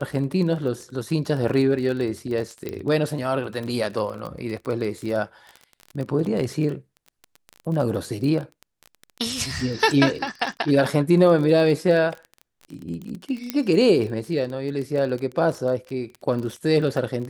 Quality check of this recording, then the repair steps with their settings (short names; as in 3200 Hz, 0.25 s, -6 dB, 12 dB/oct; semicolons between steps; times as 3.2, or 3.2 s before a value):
crackle 25/s -29 dBFS
2.69 pop -16 dBFS
13.5 pop -9 dBFS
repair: de-click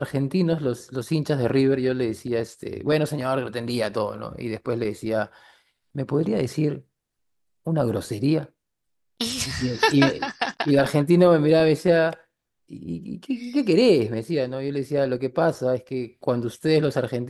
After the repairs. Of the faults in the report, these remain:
none